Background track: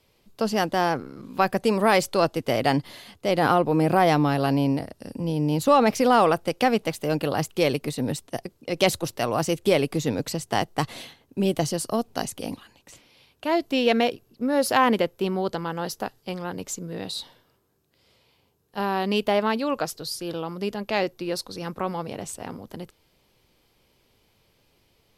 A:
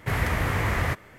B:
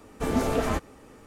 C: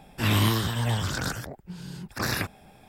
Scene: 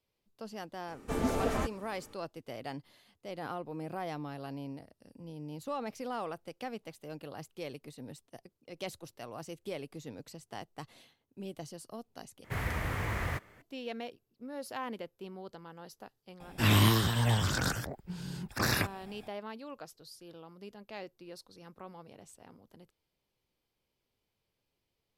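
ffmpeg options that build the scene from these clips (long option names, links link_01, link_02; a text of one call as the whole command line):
ffmpeg -i bed.wav -i cue0.wav -i cue1.wav -i cue2.wav -filter_complex "[0:a]volume=-19.5dB[link_01];[1:a]acrusher=bits=7:mode=log:mix=0:aa=0.000001[link_02];[link_01]asplit=2[link_03][link_04];[link_03]atrim=end=12.444[link_05];[link_02]atrim=end=1.18,asetpts=PTS-STARTPTS,volume=-9dB[link_06];[link_04]atrim=start=13.616[link_07];[2:a]atrim=end=1.26,asetpts=PTS-STARTPTS,volume=-5.5dB,afade=type=in:duration=0.004:curve=hsin,afade=type=out:start_time=1.256:duration=0.004:curve=hsin,adelay=880[link_08];[3:a]atrim=end=2.88,asetpts=PTS-STARTPTS,volume=-1.5dB,afade=type=in:duration=0.004:curve=hsin,afade=type=out:start_time=2.876:duration=0.004:curve=hsin,adelay=16400[link_09];[link_05][link_06]acrossfade=duration=0.004:curve1=hsin:curve2=hsin[link_10];[link_10][link_07]acrossfade=duration=0.004:curve1=hsin:curve2=hsin[link_11];[link_11][link_08][link_09]amix=inputs=3:normalize=0" out.wav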